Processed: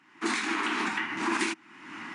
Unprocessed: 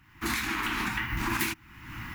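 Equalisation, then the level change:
high-pass filter 220 Hz 24 dB per octave
linear-phase brick-wall low-pass 10,000 Hz
parametric band 490 Hz +8.5 dB 1.3 octaves
0.0 dB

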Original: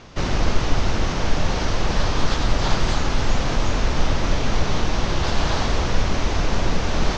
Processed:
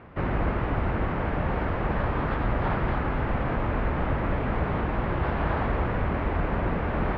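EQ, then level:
high-pass filter 42 Hz
low-pass filter 2,100 Hz 24 dB per octave
−2.5 dB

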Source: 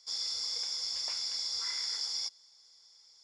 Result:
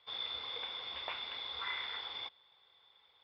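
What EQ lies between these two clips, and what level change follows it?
Chebyshev low-pass with heavy ripple 3,700 Hz, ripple 3 dB
+8.5 dB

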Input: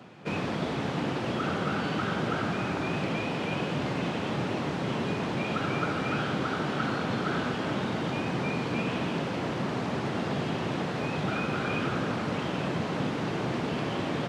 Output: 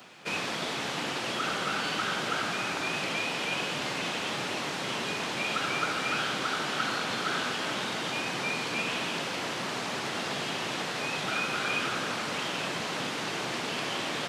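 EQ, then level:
spectral tilt +4 dB per octave
0.0 dB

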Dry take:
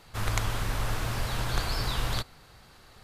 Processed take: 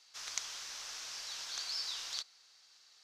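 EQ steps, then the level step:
three-way crossover with the lows and the highs turned down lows −15 dB, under 260 Hz, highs −22 dB, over 5,900 Hz
first-order pre-emphasis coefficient 0.97
parametric band 5,900 Hz +12.5 dB 0.82 octaves
−2.0 dB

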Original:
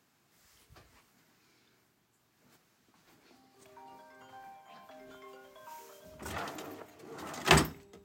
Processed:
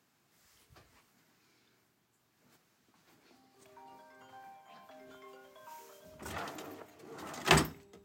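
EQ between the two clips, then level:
high-pass filter 60 Hz
−2.0 dB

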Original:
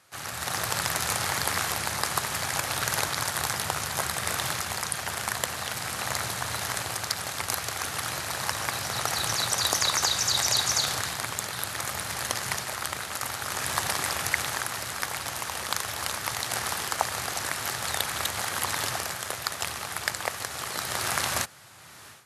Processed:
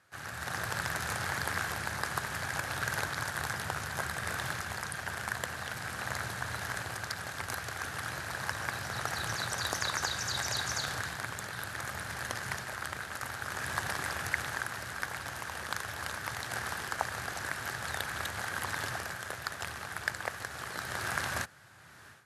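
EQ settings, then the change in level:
spectral tilt −1.5 dB per octave
parametric band 1,600 Hz +9 dB 0.41 octaves
−7.5 dB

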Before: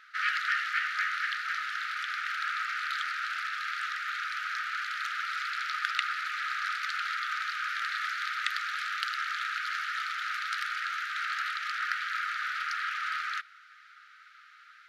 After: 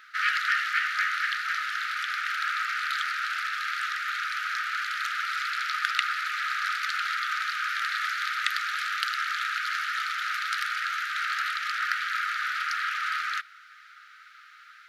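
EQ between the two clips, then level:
high-shelf EQ 10,000 Hz +8.5 dB
+3.5 dB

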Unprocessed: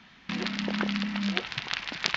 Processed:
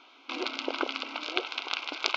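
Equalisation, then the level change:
linear-phase brick-wall high-pass 260 Hz
Butterworth band-reject 1,800 Hz, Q 2.7
low-pass filter 3,300 Hz 6 dB per octave
+3.0 dB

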